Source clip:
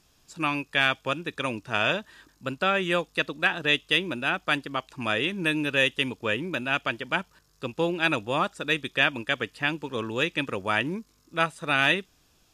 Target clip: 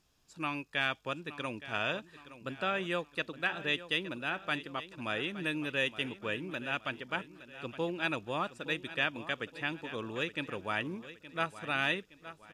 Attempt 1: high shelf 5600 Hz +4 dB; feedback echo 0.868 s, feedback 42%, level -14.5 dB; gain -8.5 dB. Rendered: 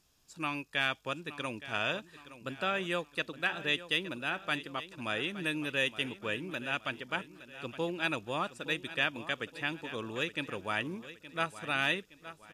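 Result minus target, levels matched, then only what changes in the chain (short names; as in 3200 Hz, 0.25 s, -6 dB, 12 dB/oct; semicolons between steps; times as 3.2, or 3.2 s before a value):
8000 Hz band +4.0 dB
change: high shelf 5600 Hz -3.5 dB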